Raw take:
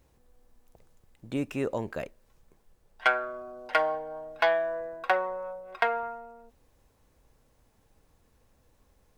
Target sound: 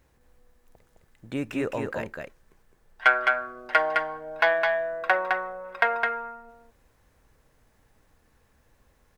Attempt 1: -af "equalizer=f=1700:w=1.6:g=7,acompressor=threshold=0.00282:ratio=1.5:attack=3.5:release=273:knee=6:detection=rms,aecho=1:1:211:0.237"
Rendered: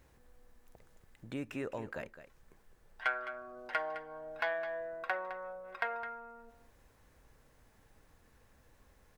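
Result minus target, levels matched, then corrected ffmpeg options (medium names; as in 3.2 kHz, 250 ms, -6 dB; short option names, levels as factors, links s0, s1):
compression: peak gain reduction +14.5 dB; echo-to-direct -8.5 dB
-af "equalizer=f=1700:w=1.6:g=7,aecho=1:1:211:0.631"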